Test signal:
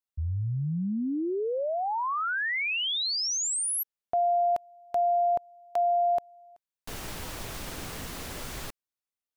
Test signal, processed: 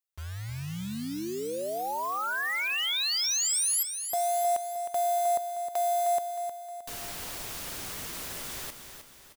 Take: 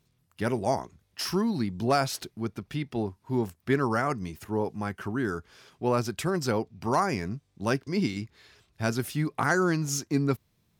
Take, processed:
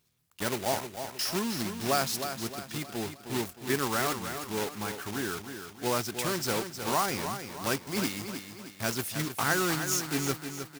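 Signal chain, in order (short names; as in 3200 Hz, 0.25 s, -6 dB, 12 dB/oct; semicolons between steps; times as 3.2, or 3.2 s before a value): block floating point 3-bit; tilt +1.5 dB/oct; on a send: feedback echo 0.311 s, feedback 45%, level -8.5 dB; on the sum: gain -3 dB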